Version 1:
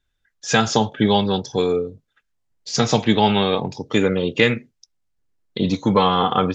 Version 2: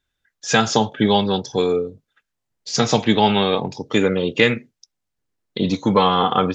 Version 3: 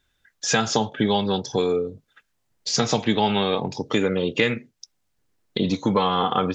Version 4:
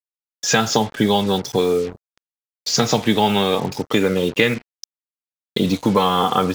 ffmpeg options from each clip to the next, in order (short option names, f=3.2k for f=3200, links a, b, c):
-af "lowshelf=f=68:g=-10,volume=1dB"
-af "acompressor=threshold=-34dB:ratio=2,volume=7dB"
-af "acrusher=bits=5:mix=0:aa=0.5,volume=4dB"